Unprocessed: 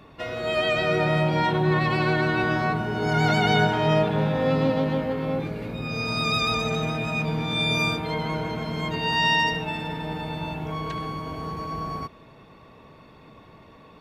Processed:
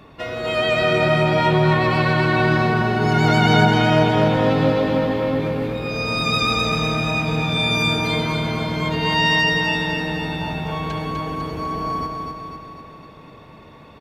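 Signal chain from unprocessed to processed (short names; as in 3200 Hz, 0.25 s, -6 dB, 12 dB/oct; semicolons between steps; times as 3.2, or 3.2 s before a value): feedback echo 0.25 s, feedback 57%, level -4.5 dB; gain +3.5 dB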